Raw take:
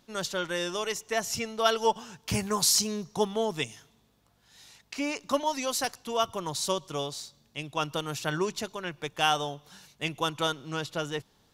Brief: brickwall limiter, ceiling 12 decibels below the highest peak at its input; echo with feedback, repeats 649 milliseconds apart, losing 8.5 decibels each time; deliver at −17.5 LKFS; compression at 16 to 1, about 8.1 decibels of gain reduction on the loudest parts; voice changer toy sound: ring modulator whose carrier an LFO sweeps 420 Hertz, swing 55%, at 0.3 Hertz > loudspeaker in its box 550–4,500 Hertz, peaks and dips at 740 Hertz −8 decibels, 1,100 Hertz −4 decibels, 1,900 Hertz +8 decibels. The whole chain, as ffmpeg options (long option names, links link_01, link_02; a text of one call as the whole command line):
ffmpeg -i in.wav -af "acompressor=threshold=-27dB:ratio=16,alimiter=level_in=3.5dB:limit=-24dB:level=0:latency=1,volume=-3.5dB,aecho=1:1:649|1298|1947|2596:0.376|0.143|0.0543|0.0206,aeval=exprs='val(0)*sin(2*PI*420*n/s+420*0.55/0.3*sin(2*PI*0.3*n/s))':channel_layout=same,highpass=550,equalizer=frequency=740:width_type=q:width=4:gain=-8,equalizer=frequency=1100:width_type=q:width=4:gain=-4,equalizer=frequency=1900:width_type=q:width=4:gain=8,lowpass=frequency=4500:width=0.5412,lowpass=frequency=4500:width=1.3066,volume=26dB" out.wav